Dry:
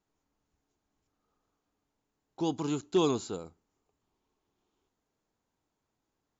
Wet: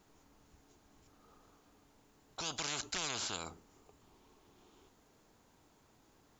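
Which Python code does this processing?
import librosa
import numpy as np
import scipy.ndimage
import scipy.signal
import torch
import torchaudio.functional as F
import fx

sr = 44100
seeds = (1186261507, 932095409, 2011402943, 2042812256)

y = fx.spectral_comp(x, sr, ratio=10.0)
y = F.gain(torch.from_numpy(y), -6.5).numpy()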